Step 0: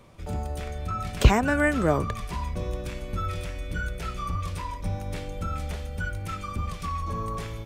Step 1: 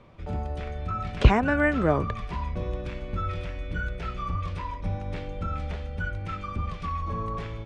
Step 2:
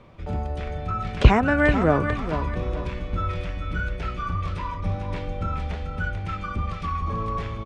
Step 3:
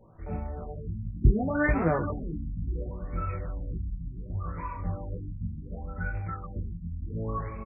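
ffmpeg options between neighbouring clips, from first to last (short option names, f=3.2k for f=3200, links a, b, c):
-af "lowpass=3.3k"
-af "aecho=1:1:439|878|1317|1756:0.335|0.107|0.0343|0.011,volume=3dB"
-filter_complex "[0:a]flanger=delay=18:depth=5.8:speed=1.1,asplit=2[a][b];[b]adelay=18,volume=-13dB[c];[a][c]amix=inputs=2:normalize=0,afftfilt=real='re*lt(b*sr/1024,280*pow(2700/280,0.5+0.5*sin(2*PI*0.69*pts/sr)))':imag='im*lt(b*sr/1024,280*pow(2700/280,0.5+0.5*sin(2*PI*0.69*pts/sr)))':win_size=1024:overlap=0.75,volume=-3dB"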